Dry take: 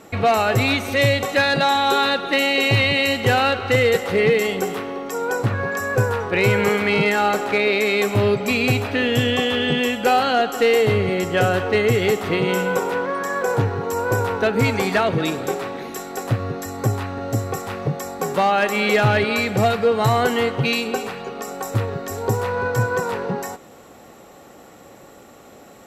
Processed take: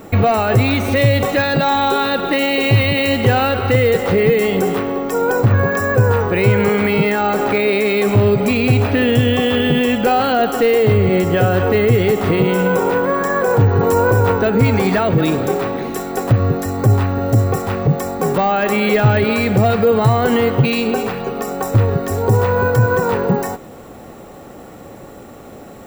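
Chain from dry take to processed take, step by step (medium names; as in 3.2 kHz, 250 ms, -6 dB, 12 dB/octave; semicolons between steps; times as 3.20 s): peak limiter -14.5 dBFS, peak gain reduction 5.5 dB; tilt EQ -2 dB/octave; careless resampling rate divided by 2×, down none, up hold; treble shelf 8.8 kHz +6 dB; 13.75–14.32 s: level flattener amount 50%; trim +6 dB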